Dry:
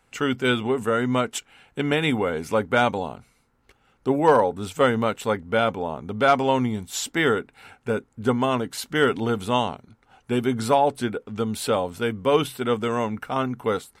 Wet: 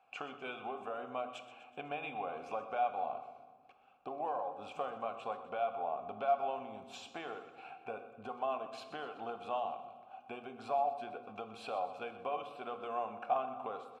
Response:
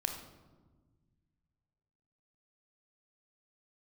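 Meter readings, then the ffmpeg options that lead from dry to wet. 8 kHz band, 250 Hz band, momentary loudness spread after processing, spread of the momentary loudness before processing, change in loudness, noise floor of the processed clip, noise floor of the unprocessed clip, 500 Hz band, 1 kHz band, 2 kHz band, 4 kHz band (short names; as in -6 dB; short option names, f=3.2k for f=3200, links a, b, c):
under -25 dB, -26.0 dB, 13 LU, 9 LU, -16.5 dB, -61 dBFS, -65 dBFS, -16.5 dB, -11.5 dB, -20.5 dB, -21.5 dB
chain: -filter_complex "[0:a]bandreject=f=60:t=h:w=6,bandreject=f=120:t=h:w=6,acompressor=threshold=-30dB:ratio=10,asplit=3[a][b][c];[a]bandpass=f=730:t=q:w=8,volume=0dB[d];[b]bandpass=f=1.09k:t=q:w=8,volume=-6dB[e];[c]bandpass=f=2.44k:t=q:w=8,volume=-9dB[f];[d][e][f]amix=inputs=3:normalize=0,aecho=1:1:125|250|375|500|625:0.188|0.104|0.057|0.0313|0.0172,asplit=2[g][h];[1:a]atrim=start_sample=2205,lowpass=9k[i];[h][i]afir=irnorm=-1:irlink=0,volume=-2dB[j];[g][j]amix=inputs=2:normalize=0,volume=1.5dB"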